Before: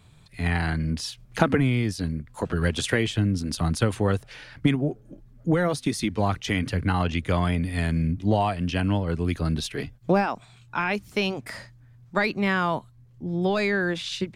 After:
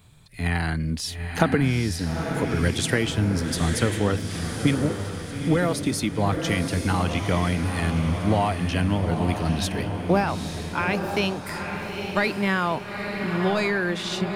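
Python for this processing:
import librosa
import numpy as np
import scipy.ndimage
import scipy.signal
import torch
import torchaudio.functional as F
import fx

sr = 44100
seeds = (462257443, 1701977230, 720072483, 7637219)

y = fx.high_shelf(x, sr, hz=10000.0, db=10.5)
y = fx.echo_diffused(y, sr, ms=876, feedback_pct=50, wet_db=-5.5)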